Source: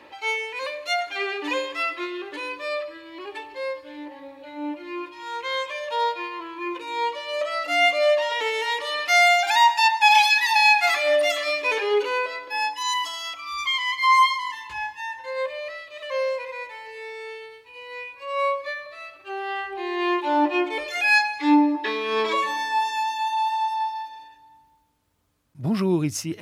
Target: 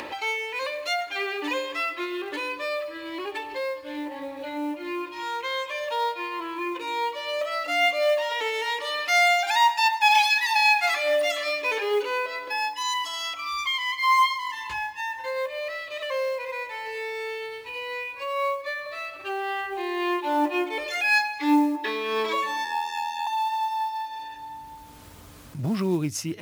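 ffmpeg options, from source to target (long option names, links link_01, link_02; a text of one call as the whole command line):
ffmpeg -i in.wav -filter_complex "[0:a]asettb=1/sr,asplit=3[link_01][link_02][link_03];[link_01]atrim=end=22.644[link_04];[link_02]atrim=start=22.64:end=23.27,asetpts=PTS-STARTPTS,afade=type=in:duration=0.004:curve=qsin,afade=type=out:start_time=0.626:duration=0.004:curve=qsin,aeval=exprs='val(0)*sin(2*PI*41*n/s)':channel_layout=same[link_05];[link_03]atrim=start=23.266[link_06];[link_04][link_05]acrossfade=duration=0.004:curve1=hsin:curve2=qsin[link_07];[link_07][link_06]acrossfade=duration=0.004:curve1=qsin:curve2=hsin,acompressor=mode=upward:threshold=-21dB:ratio=2.5,acrusher=bits=7:mode=log:mix=0:aa=0.000001,volume=-3dB" out.wav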